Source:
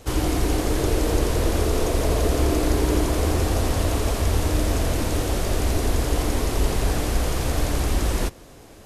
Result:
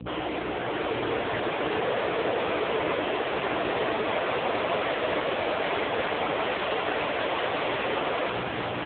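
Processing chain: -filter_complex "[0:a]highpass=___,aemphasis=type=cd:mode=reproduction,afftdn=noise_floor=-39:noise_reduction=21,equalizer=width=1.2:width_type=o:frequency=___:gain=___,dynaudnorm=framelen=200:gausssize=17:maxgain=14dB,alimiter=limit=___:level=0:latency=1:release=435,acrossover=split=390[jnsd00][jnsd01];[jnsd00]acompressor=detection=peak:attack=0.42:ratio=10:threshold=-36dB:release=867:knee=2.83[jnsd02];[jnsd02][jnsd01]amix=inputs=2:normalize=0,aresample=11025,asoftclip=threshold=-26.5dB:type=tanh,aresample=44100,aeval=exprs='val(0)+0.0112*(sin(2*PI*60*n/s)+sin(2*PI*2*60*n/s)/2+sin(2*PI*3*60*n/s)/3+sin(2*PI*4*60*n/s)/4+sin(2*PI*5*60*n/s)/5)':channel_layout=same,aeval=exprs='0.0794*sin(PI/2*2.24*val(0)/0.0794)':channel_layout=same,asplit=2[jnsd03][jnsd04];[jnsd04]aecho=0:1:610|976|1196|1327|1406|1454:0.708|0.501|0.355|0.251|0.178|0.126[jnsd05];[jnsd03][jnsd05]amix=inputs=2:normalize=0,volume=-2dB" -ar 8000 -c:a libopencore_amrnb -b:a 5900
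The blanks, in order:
300, 2.9k, 5.5, -11.5dB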